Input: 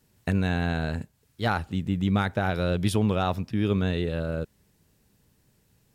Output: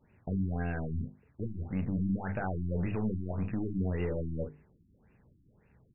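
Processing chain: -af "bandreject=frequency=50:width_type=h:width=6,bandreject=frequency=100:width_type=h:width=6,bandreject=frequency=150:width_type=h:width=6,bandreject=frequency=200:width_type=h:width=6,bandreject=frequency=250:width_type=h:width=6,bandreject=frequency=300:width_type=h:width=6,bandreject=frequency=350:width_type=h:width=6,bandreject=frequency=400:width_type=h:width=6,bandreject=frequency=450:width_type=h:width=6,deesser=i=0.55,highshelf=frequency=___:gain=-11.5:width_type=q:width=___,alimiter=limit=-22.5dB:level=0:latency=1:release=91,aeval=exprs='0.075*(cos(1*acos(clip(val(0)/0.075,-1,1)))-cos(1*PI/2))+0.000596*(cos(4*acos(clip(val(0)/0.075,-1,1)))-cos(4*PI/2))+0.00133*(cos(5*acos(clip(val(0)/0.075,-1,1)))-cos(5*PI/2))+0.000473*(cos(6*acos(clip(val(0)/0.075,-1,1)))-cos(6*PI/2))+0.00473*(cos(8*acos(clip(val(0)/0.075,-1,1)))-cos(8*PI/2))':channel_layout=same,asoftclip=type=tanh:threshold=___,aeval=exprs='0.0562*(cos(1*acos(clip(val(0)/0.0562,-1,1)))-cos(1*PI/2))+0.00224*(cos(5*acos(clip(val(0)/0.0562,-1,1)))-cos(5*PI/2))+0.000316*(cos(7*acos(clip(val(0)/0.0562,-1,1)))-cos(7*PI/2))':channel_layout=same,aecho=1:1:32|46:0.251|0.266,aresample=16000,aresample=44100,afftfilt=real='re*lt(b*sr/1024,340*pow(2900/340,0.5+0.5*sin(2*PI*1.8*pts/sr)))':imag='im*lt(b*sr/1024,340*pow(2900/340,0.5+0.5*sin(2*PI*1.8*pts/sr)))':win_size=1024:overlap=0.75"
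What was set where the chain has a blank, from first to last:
3.9k, 1.5, -23.5dB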